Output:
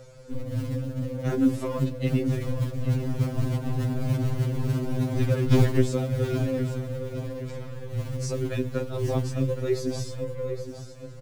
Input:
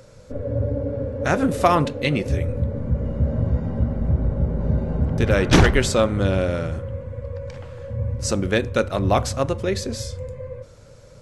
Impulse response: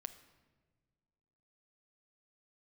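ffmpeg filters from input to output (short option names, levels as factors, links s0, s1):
-filter_complex "[0:a]acrossover=split=450[s0][s1];[s1]acompressor=threshold=0.0158:ratio=4[s2];[s0][s2]amix=inputs=2:normalize=0,acrossover=split=250|970|2700[s3][s4][s5][s6];[s3]acrusher=bits=5:mode=log:mix=0:aa=0.000001[s7];[s7][s4][s5][s6]amix=inputs=4:normalize=0,aecho=1:1:815|1630|2445|3260|4075:0.266|0.122|0.0563|0.0259|0.0119,afftfilt=real='re*2.45*eq(mod(b,6),0)':imag='im*2.45*eq(mod(b,6),0)':win_size=2048:overlap=0.75"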